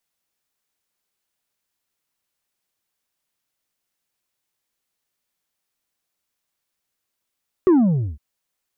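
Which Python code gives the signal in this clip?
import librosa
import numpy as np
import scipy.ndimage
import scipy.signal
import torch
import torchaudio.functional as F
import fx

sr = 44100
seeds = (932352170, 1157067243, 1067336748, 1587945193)

y = fx.sub_drop(sr, level_db=-10.5, start_hz=390.0, length_s=0.51, drive_db=4.0, fade_s=0.51, end_hz=65.0)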